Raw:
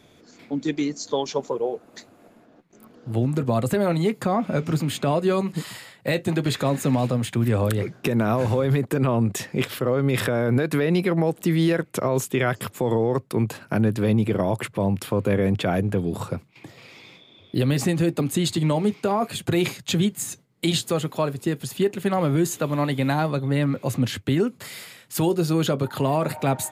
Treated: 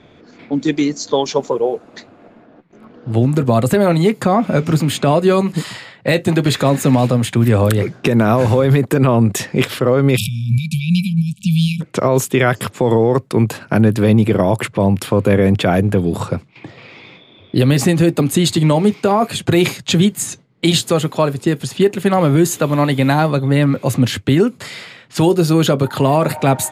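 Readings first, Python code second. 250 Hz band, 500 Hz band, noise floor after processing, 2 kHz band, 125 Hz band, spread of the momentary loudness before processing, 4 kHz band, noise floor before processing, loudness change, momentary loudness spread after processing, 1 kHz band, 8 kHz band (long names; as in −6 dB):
+8.0 dB, +8.0 dB, −47 dBFS, +7.5 dB, +8.5 dB, 6 LU, +8.5 dB, −54 dBFS, +8.0 dB, 6 LU, +8.5 dB, +8.0 dB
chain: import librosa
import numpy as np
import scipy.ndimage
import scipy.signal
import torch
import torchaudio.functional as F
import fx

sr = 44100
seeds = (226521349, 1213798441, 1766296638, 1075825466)

y = fx.spec_erase(x, sr, start_s=10.17, length_s=1.64, low_hz=220.0, high_hz=2300.0)
y = fx.env_lowpass(y, sr, base_hz=2900.0, full_db=-21.0)
y = F.gain(torch.from_numpy(y), 8.5).numpy()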